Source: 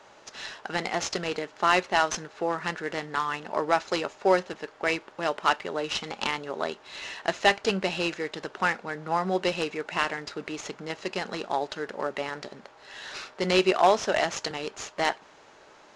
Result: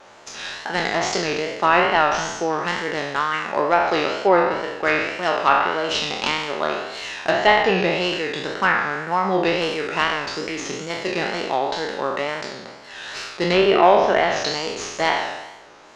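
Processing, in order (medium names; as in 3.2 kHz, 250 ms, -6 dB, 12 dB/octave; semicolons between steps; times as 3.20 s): spectral sustain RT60 1.10 s; wow and flutter 99 cents; low-pass that closes with the level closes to 2.6 kHz, closed at -16.5 dBFS; trim +4 dB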